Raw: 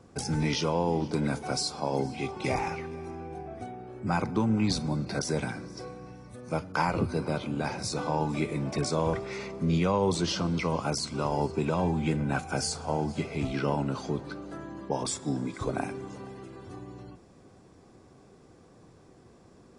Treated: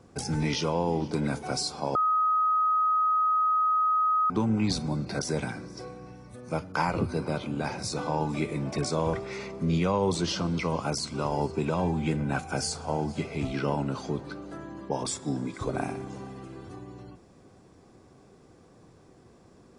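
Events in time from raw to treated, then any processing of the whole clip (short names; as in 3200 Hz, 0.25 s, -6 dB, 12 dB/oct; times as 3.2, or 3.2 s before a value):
1.95–4.3 bleep 1260 Hz -21 dBFS
15.68–16.69 flutter echo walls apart 10.4 m, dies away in 0.5 s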